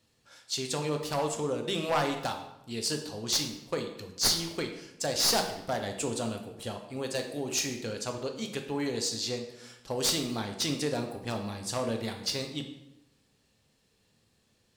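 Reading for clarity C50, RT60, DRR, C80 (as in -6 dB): 8.0 dB, 0.95 s, 3.5 dB, 10.0 dB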